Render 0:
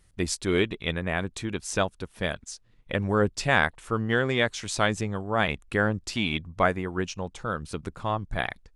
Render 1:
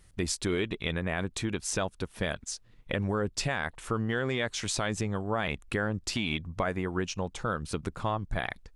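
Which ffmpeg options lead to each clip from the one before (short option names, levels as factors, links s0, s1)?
-af "alimiter=limit=0.141:level=0:latency=1:release=43,acompressor=threshold=0.0251:ratio=2,volume=1.41"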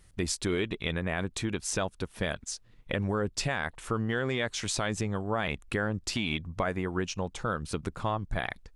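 -af anull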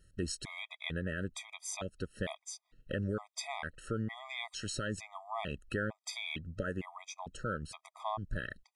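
-af "afftfilt=real='re*gt(sin(2*PI*1.1*pts/sr)*(1-2*mod(floor(b*sr/1024/640),2)),0)':imag='im*gt(sin(2*PI*1.1*pts/sr)*(1-2*mod(floor(b*sr/1024/640),2)),0)':win_size=1024:overlap=0.75,volume=0.596"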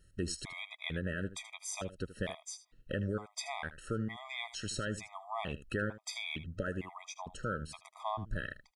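-af "aecho=1:1:78:0.178"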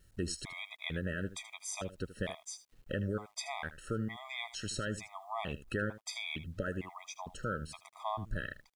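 -af "acrusher=bits=11:mix=0:aa=0.000001"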